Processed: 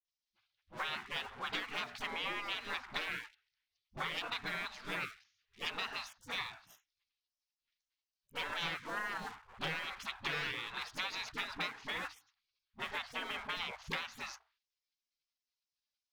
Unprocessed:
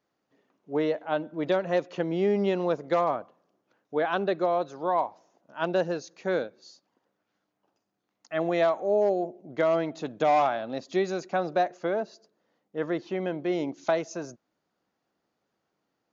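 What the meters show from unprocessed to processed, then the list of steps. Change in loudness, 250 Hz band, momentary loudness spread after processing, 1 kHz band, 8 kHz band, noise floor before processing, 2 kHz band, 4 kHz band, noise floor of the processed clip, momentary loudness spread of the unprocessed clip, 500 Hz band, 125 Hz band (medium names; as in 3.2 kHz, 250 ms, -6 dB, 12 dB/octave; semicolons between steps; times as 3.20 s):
-11.5 dB, -21.0 dB, 8 LU, -13.5 dB, no reading, -80 dBFS, -1.5 dB, +4.0 dB, under -85 dBFS, 10 LU, -25.0 dB, -15.0 dB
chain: low-pass 4.4 kHz 24 dB/octave; hum notches 60/120/180/240/300/360/420/480/540/600 Hz; waveshaping leveller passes 1; dynamic bell 1.4 kHz, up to +4 dB, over -39 dBFS, Q 1; spectral gate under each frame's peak -25 dB weak; compression 5:1, threshold -44 dBFS, peak gain reduction 10.5 dB; phase dispersion highs, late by 45 ms, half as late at 390 Hz; trim +8.5 dB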